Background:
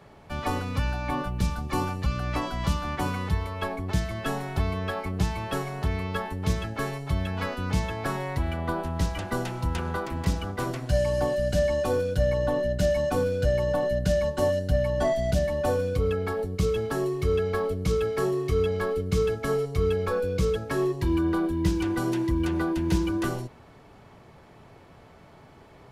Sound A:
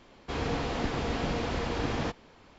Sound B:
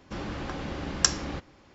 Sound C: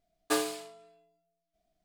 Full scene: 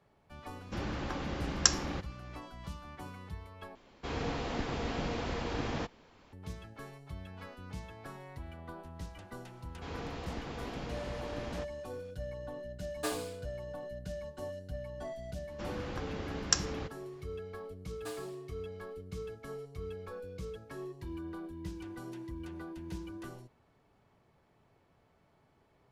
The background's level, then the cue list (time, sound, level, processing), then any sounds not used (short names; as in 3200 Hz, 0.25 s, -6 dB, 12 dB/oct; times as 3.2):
background -17.5 dB
0.61 add B -2.5 dB
3.75 replace with A -4.5 dB
9.53 add A -10.5 dB
12.73 add C -7 dB
15.48 add B -5.5 dB
17.75 add C -16 dB